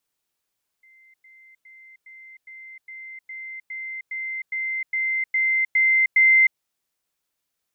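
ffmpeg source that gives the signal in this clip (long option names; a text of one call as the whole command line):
ffmpeg -f lavfi -i "aevalsrc='pow(10,(-51+3*floor(t/0.41))/20)*sin(2*PI*2080*t)*clip(min(mod(t,0.41),0.31-mod(t,0.41))/0.005,0,1)':duration=5.74:sample_rate=44100" out.wav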